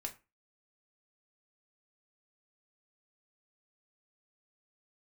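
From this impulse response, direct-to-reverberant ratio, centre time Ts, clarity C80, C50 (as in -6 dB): 2.0 dB, 10 ms, 21.5 dB, 15.0 dB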